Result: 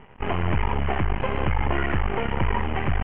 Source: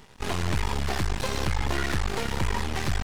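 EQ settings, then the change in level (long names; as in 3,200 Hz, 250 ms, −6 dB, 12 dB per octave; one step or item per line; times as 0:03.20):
Chebyshev low-pass with heavy ripple 3,100 Hz, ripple 3 dB
high-frequency loss of the air 260 metres
+6.5 dB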